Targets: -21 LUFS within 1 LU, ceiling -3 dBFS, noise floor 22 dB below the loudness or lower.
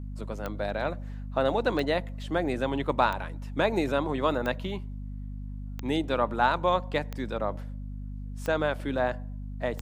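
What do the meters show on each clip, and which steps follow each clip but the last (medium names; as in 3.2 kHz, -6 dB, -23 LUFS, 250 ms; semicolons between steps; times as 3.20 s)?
clicks found 8; hum 50 Hz; highest harmonic 250 Hz; hum level -34 dBFS; loudness -29.0 LUFS; peak level -9.0 dBFS; loudness target -21.0 LUFS
-> de-click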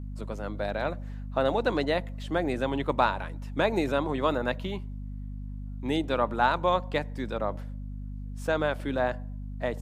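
clicks found 0; hum 50 Hz; highest harmonic 250 Hz; hum level -34 dBFS
-> hum notches 50/100/150/200/250 Hz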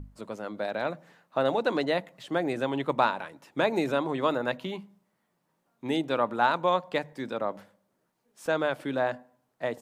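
hum not found; loudness -29.0 LUFS; peak level -9.5 dBFS; loudness target -21.0 LUFS
-> trim +8 dB; peak limiter -3 dBFS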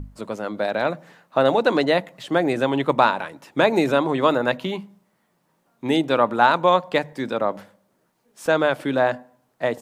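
loudness -21.5 LUFS; peak level -3.0 dBFS; noise floor -68 dBFS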